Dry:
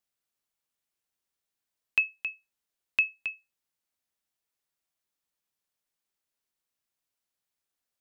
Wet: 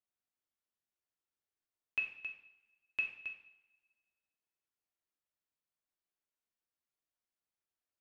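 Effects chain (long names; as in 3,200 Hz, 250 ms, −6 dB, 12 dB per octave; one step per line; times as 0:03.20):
high-shelf EQ 2,800 Hz −9 dB
coupled-rooms reverb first 0.62 s, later 1.6 s, from −18 dB, DRR 0 dB
level −8.5 dB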